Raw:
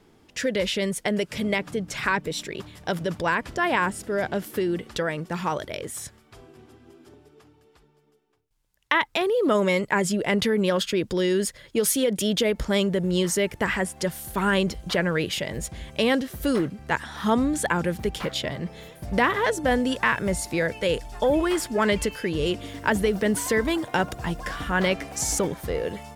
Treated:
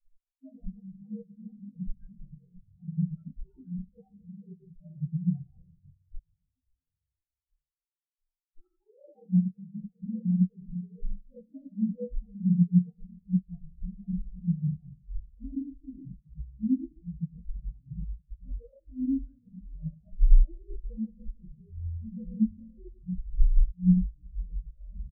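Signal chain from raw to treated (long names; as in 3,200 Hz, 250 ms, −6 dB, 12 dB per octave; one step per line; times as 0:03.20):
partials spread apart or drawn together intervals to 120%
spectral tilt −4.5 dB per octave
brickwall limiter −13.5 dBFS, peak gain reduction 11 dB
reversed playback
downward compressor 5 to 1, threshold −31 dBFS, peak gain reduction 13.5 dB
reversed playback
repeating echo 584 ms, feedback 57%, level −13 dB
rectangular room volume 210 cubic metres, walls mixed, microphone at 3.4 metres
wrong playback speed 24 fps film run at 25 fps
every bin expanded away from the loudest bin 4 to 1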